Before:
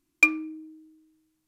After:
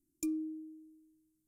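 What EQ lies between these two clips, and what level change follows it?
Chebyshev band-stop 340–8600 Hz, order 2; band shelf 650 Hz -12 dB 1.1 oct; -3.0 dB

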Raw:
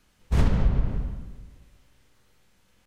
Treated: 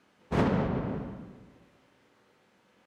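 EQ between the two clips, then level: HPF 240 Hz 12 dB/oct; LPF 1300 Hz 6 dB/oct; +6.5 dB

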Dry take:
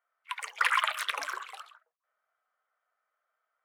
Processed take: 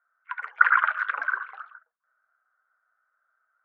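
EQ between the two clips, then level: synth low-pass 1500 Hz, resonance Q 8; -4.0 dB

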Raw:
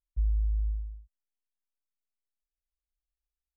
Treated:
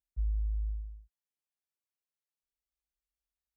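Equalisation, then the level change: HPF 42 Hz 12 dB/oct; -3.0 dB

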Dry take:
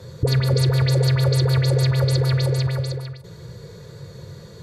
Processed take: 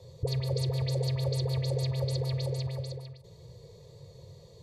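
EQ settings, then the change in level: high shelf 9500 Hz -7.5 dB; fixed phaser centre 610 Hz, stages 4; -8.5 dB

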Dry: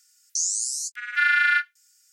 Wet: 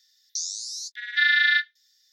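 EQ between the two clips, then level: bell 3600 Hz +12 dB 0.27 oct; dynamic EQ 1100 Hz, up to +6 dB, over -36 dBFS, Q 2.5; EQ curve 260 Hz 0 dB, 380 Hz +14 dB, 670 Hz +3 dB, 1200 Hz -20 dB, 1800 Hz +14 dB, 2500 Hz -2 dB, 3600 Hz +13 dB, 5600 Hz +8 dB, 8400 Hz -13 dB, 14000 Hz +2 dB; -8.5 dB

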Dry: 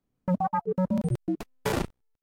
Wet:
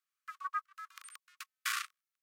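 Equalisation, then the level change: Chebyshev high-pass 1100 Hz, order 10; +1.0 dB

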